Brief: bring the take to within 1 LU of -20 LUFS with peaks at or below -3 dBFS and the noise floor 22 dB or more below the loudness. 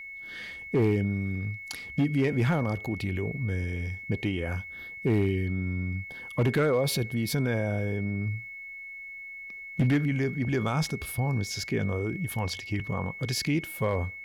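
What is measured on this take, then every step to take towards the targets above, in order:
clipped samples 0.5%; clipping level -18.5 dBFS; steady tone 2.2 kHz; tone level -39 dBFS; loudness -29.5 LUFS; peak level -18.5 dBFS; loudness target -20.0 LUFS
-> clip repair -18.5 dBFS; band-stop 2.2 kHz, Q 30; trim +9.5 dB

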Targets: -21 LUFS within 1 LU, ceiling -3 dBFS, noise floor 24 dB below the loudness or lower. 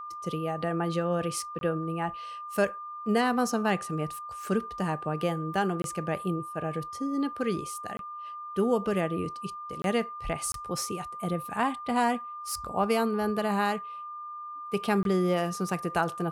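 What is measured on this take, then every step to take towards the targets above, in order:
dropouts 6; longest dropout 22 ms; steady tone 1.2 kHz; tone level -37 dBFS; loudness -30.0 LUFS; peak level -13.0 dBFS; loudness target -21.0 LUFS
-> interpolate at 1.59/5.82/7.97/9.82/10.52/15.03 s, 22 ms; band-stop 1.2 kHz, Q 30; trim +9 dB

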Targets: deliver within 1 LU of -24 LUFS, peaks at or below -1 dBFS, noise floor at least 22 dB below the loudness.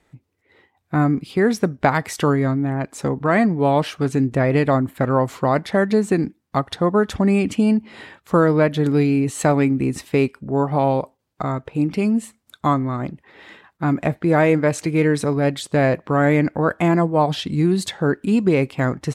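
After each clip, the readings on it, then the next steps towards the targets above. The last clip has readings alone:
loudness -19.5 LUFS; peak level -2.5 dBFS; loudness target -24.0 LUFS
-> trim -4.5 dB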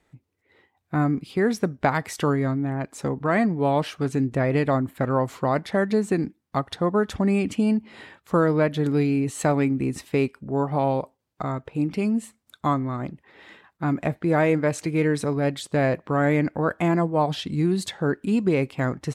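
loudness -24.0 LUFS; peak level -7.0 dBFS; noise floor -74 dBFS

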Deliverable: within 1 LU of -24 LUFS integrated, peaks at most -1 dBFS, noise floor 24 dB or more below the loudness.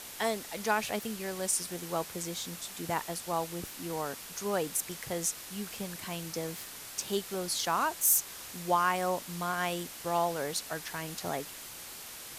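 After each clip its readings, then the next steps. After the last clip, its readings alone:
noise floor -45 dBFS; noise floor target -57 dBFS; loudness -33.0 LUFS; peak level -13.0 dBFS; loudness target -24.0 LUFS
-> noise reduction 12 dB, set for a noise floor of -45 dBFS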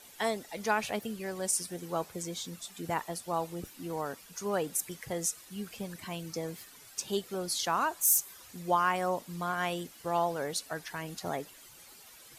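noise floor -54 dBFS; noise floor target -57 dBFS
-> noise reduction 6 dB, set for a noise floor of -54 dBFS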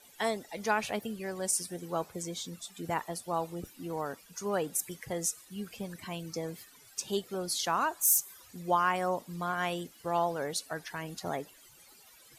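noise floor -58 dBFS; loudness -33.0 LUFS; peak level -13.0 dBFS; loudness target -24.0 LUFS
-> trim +9 dB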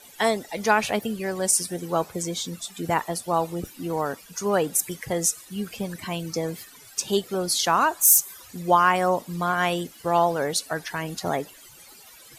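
loudness -24.0 LUFS; peak level -4.0 dBFS; noise floor -49 dBFS

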